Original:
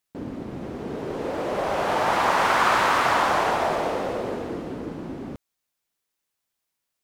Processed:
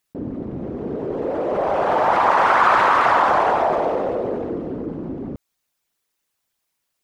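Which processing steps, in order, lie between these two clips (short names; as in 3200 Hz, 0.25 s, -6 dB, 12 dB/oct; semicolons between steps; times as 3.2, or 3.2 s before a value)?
formant sharpening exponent 1.5; gain +5 dB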